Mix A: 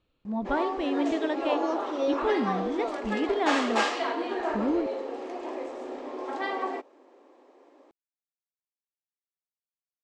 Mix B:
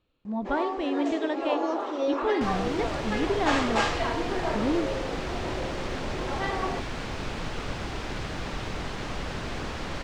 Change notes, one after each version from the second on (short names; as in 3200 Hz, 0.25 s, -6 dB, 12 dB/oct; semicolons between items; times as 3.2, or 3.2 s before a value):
second sound: unmuted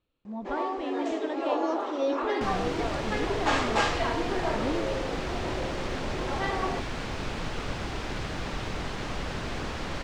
speech -6.0 dB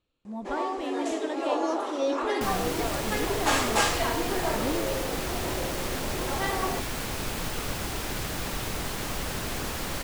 master: remove air absorption 130 m